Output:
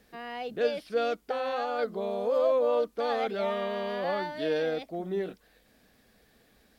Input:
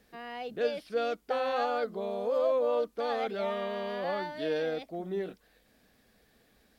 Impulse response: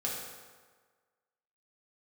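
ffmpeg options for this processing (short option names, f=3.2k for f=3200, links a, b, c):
-filter_complex "[0:a]asettb=1/sr,asplit=3[a][b][c];[a]atrim=end=1.254[d];[b]atrim=start=1.25:end=1.79,asetpts=PTS-STARTPTS,afade=t=in:d=0.004:c=qsin,afade=t=out:st=0.536:d=0.004:c=qsin,acompressor=threshold=-30dB:ratio=6[e];[c]atrim=start=1.786[f];[d][e]acrossfade=d=0.004:c1=hsin:c2=qsin[g];[g][f]acrossfade=d=0.004:c1=qsin:c2=hsin,volume=2.5dB"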